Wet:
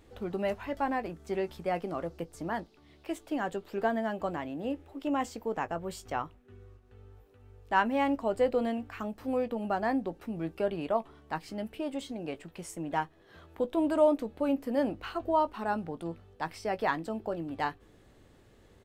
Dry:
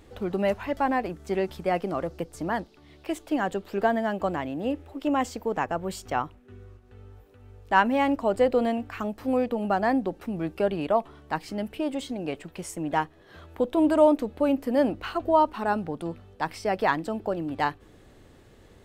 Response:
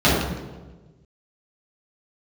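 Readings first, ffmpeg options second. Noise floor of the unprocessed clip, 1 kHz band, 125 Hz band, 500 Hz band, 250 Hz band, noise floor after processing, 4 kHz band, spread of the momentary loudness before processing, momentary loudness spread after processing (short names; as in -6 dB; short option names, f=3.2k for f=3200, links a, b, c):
-54 dBFS, -6.0 dB, -6.0 dB, -5.5 dB, -6.0 dB, -60 dBFS, -6.0 dB, 11 LU, 11 LU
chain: -filter_complex "[0:a]asplit=2[a][b];[b]adelay=18,volume=-12.5dB[c];[a][c]amix=inputs=2:normalize=0,volume=-6dB"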